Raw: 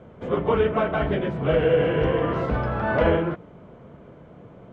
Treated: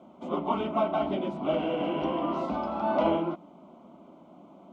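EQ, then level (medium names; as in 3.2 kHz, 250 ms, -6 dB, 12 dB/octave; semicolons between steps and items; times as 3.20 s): high-pass 190 Hz 12 dB/octave; static phaser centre 460 Hz, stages 6; 0.0 dB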